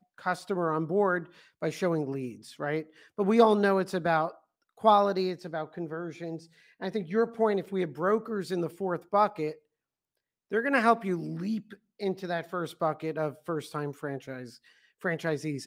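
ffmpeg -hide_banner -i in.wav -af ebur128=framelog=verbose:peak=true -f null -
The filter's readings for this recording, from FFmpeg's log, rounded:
Integrated loudness:
  I:         -29.3 LUFS
  Threshold: -39.8 LUFS
Loudness range:
  LRA:         7.3 LU
  Threshold: -49.6 LUFS
  LRA low:   -34.0 LUFS
  LRA high:  -26.6 LUFS
True peak:
  Peak:       -7.9 dBFS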